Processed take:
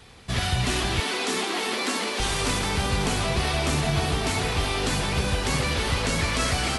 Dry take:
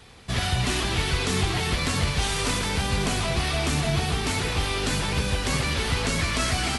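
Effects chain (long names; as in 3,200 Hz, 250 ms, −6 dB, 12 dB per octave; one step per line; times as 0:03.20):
0:01.00–0:02.20: Butterworth high-pass 200 Hz 96 dB per octave
delay with a band-pass on its return 379 ms, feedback 55%, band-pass 660 Hz, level −4.5 dB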